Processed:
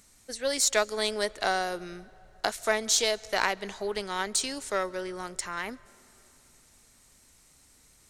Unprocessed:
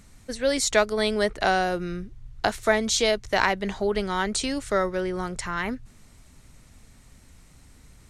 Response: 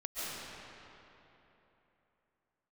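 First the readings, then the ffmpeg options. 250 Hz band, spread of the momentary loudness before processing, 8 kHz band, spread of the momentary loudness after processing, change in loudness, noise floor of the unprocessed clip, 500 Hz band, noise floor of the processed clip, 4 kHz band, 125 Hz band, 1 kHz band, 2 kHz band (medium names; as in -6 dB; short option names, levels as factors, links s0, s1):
-10.5 dB, 9 LU, +1.5 dB, 13 LU, -4.0 dB, -53 dBFS, -6.0 dB, -60 dBFS, -1.5 dB, -13.0 dB, -5.0 dB, -4.5 dB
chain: -filter_complex "[0:a]aeval=exprs='0.562*(cos(1*acos(clip(val(0)/0.562,-1,1)))-cos(1*PI/2))+0.0316*(cos(4*acos(clip(val(0)/0.562,-1,1)))-cos(4*PI/2))+0.01*(cos(7*acos(clip(val(0)/0.562,-1,1)))-cos(7*PI/2))+0.00447*(cos(8*acos(clip(val(0)/0.562,-1,1)))-cos(8*PI/2))':c=same,bass=f=250:g=-10,treble=f=4000:g=8,asplit=2[s0][s1];[1:a]atrim=start_sample=2205[s2];[s1][s2]afir=irnorm=-1:irlink=0,volume=0.0501[s3];[s0][s3]amix=inputs=2:normalize=0,volume=0.562"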